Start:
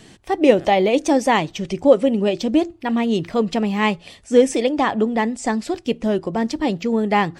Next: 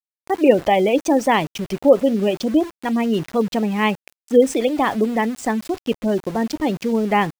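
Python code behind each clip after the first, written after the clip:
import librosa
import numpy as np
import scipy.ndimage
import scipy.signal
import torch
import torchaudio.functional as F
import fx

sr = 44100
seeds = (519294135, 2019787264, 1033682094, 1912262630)

y = fx.spec_gate(x, sr, threshold_db=-30, keep='strong')
y = np.where(np.abs(y) >= 10.0 ** (-31.5 / 20.0), y, 0.0)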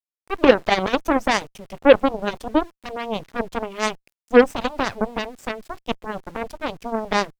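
y = fx.cheby_harmonics(x, sr, harmonics=(7, 8), levels_db=(-15, -23), full_scale_db=-1.0)
y = fx.vibrato(y, sr, rate_hz=0.36, depth_cents=7.0)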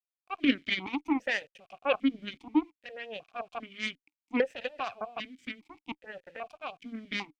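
y = fx.peak_eq(x, sr, hz=480.0, db=-13.0, octaves=2.9)
y = fx.vowel_held(y, sr, hz=2.5)
y = y * 10.0 ** (8.0 / 20.0)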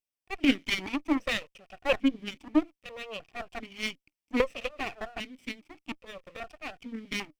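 y = fx.lower_of_two(x, sr, delay_ms=0.36)
y = y * 10.0 ** (2.0 / 20.0)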